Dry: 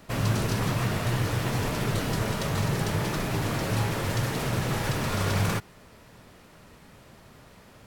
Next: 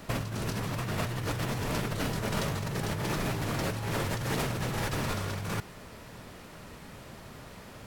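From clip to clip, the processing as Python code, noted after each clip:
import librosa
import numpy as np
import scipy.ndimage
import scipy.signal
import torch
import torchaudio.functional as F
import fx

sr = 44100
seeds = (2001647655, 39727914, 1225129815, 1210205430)

y = fx.over_compress(x, sr, threshold_db=-32.0, ratio=-1.0)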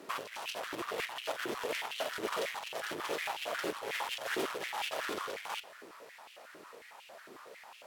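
y = fx.cheby_harmonics(x, sr, harmonics=(6,), levels_db=(-21,), full_scale_db=-17.0)
y = fx.dynamic_eq(y, sr, hz=3200.0, q=3.0, threshold_db=-55.0, ratio=4.0, max_db=5)
y = fx.filter_held_highpass(y, sr, hz=11.0, low_hz=350.0, high_hz=2700.0)
y = y * 10.0 ** (-7.0 / 20.0)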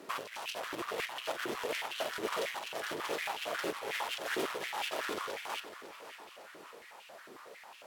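y = fx.echo_feedback(x, sr, ms=554, feedback_pct=43, wet_db=-13.5)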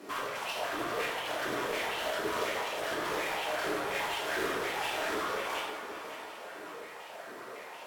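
y = 10.0 ** (-35.0 / 20.0) * np.tanh(x / 10.0 ** (-35.0 / 20.0))
y = fx.rev_plate(y, sr, seeds[0], rt60_s=1.5, hf_ratio=0.45, predelay_ms=0, drr_db=-6.5)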